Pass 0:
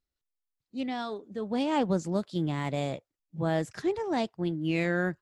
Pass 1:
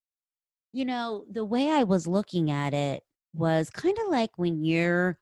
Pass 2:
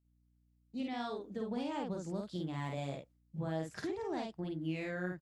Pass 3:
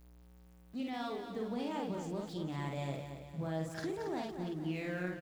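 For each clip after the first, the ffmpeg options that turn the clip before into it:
ffmpeg -i in.wav -af "agate=range=-33dB:threshold=-52dB:ratio=3:detection=peak,volume=3.5dB" out.wav
ffmpeg -i in.wav -filter_complex "[0:a]acompressor=threshold=-32dB:ratio=6,aeval=exprs='val(0)+0.000316*(sin(2*PI*60*n/s)+sin(2*PI*2*60*n/s)/2+sin(2*PI*3*60*n/s)/3+sin(2*PI*4*60*n/s)/4+sin(2*PI*5*60*n/s)/5)':channel_layout=same,asplit=2[link_01][link_02];[link_02]adelay=50,volume=-2.5dB[link_03];[link_01][link_03]amix=inputs=2:normalize=0,volume=-5.5dB" out.wav
ffmpeg -i in.wav -af "aeval=exprs='val(0)+0.5*0.00237*sgn(val(0))':channel_layout=same,aecho=1:1:228|456|684|912|1140|1368:0.376|0.184|0.0902|0.0442|0.0217|0.0106,volume=-1dB" out.wav

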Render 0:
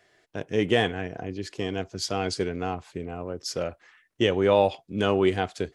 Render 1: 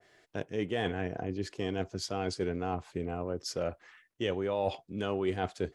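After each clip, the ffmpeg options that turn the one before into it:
ffmpeg -i in.wav -af "areverse,acompressor=threshold=-28dB:ratio=6,areverse,adynamicequalizer=threshold=0.00398:dfrequency=1600:dqfactor=0.7:tfrequency=1600:tqfactor=0.7:attack=5:release=100:ratio=0.375:range=2.5:mode=cutabove:tftype=highshelf" out.wav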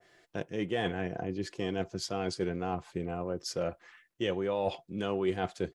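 ffmpeg -i in.wav -af "aecho=1:1:5.8:0.32" out.wav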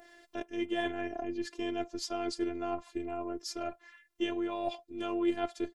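ffmpeg -i in.wav -af "acompressor=mode=upward:threshold=-50dB:ratio=2.5,afftfilt=real='hypot(re,im)*cos(PI*b)':imag='0':win_size=512:overlap=0.75,volume=2dB" out.wav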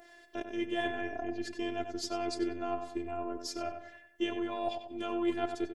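ffmpeg -i in.wav -filter_complex "[0:a]asplit=2[link_01][link_02];[link_02]adelay=94,lowpass=frequency=2600:poles=1,volume=-7dB,asplit=2[link_03][link_04];[link_04]adelay=94,lowpass=frequency=2600:poles=1,volume=0.44,asplit=2[link_05][link_06];[link_06]adelay=94,lowpass=frequency=2600:poles=1,volume=0.44,asplit=2[link_07][link_08];[link_08]adelay=94,lowpass=frequency=2600:poles=1,volume=0.44,asplit=2[link_09][link_10];[link_10]adelay=94,lowpass=frequency=2600:poles=1,volume=0.44[link_11];[link_01][link_03][link_05][link_07][link_09][link_11]amix=inputs=6:normalize=0" out.wav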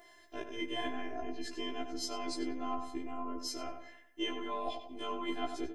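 ffmpeg -i in.wav -af "afftfilt=real='re*1.73*eq(mod(b,3),0)':imag='im*1.73*eq(mod(b,3),0)':win_size=2048:overlap=0.75,volume=3dB" out.wav

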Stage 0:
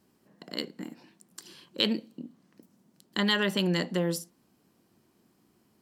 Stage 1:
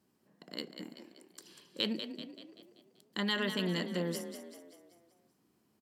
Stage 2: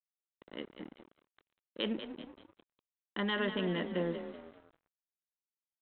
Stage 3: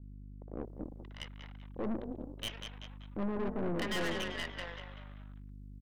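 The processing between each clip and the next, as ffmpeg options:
ffmpeg -i in.wav -filter_complex "[0:a]highpass=59,asplit=7[link_01][link_02][link_03][link_04][link_05][link_06][link_07];[link_02]adelay=192,afreqshift=33,volume=-9dB[link_08];[link_03]adelay=384,afreqshift=66,volume=-15dB[link_09];[link_04]adelay=576,afreqshift=99,volume=-21dB[link_10];[link_05]adelay=768,afreqshift=132,volume=-27.1dB[link_11];[link_06]adelay=960,afreqshift=165,volume=-33.1dB[link_12];[link_07]adelay=1152,afreqshift=198,volume=-39.1dB[link_13];[link_01][link_08][link_09][link_10][link_11][link_12][link_13]amix=inputs=7:normalize=0,volume=-7dB" out.wav
ffmpeg -i in.wav -af "lowpass=frequency=1600:poles=1,equalizer=frequency=93:width_type=o:width=1.4:gain=-13,aresample=8000,aeval=exprs='sgn(val(0))*max(abs(val(0))-0.00178,0)':channel_layout=same,aresample=44100,volume=4dB" out.wav
ffmpeg -i in.wav -filter_complex "[0:a]aeval=exprs='val(0)+0.00282*(sin(2*PI*50*n/s)+sin(2*PI*2*50*n/s)/2+sin(2*PI*3*50*n/s)/3+sin(2*PI*4*50*n/s)/4+sin(2*PI*5*50*n/s)/5)':channel_layout=same,acrossover=split=800[link_01][link_02];[link_02]adelay=630[link_03];[link_01][link_03]amix=inputs=2:normalize=0,aeval=exprs='(tanh(100*val(0)+0.75)-tanh(0.75))/100':channel_layout=same,volume=8dB" out.wav

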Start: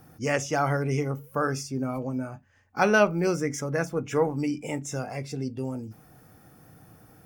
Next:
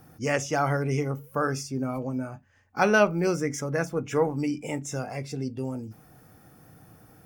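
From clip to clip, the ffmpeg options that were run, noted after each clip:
ffmpeg -i in.wav -af anull out.wav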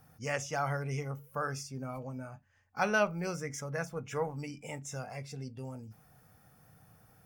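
ffmpeg -i in.wav -af "equalizer=frequency=320:width=1.9:gain=-11.5,volume=-6.5dB" out.wav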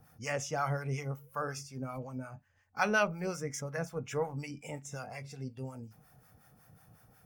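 ffmpeg -i in.wav -filter_complex "[0:a]acrossover=split=750[link_01][link_02];[link_01]aeval=exprs='val(0)*(1-0.7/2+0.7/2*cos(2*PI*5.5*n/s))':channel_layout=same[link_03];[link_02]aeval=exprs='val(0)*(1-0.7/2-0.7/2*cos(2*PI*5.5*n/s))':channel_layout=same[link_04];[link_03][link_04]amix=inputs=2:normalize=0,volume=3dB" out.wav

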